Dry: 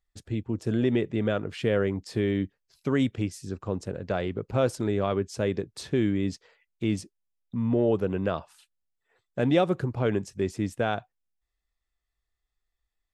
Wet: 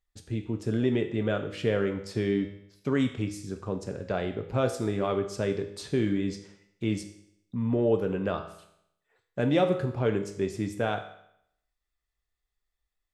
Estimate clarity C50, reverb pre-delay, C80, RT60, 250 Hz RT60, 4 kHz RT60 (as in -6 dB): 10.0 dB, 4 ms, 13.0 dB, 0.75 s, 0.75 s, 0.70 s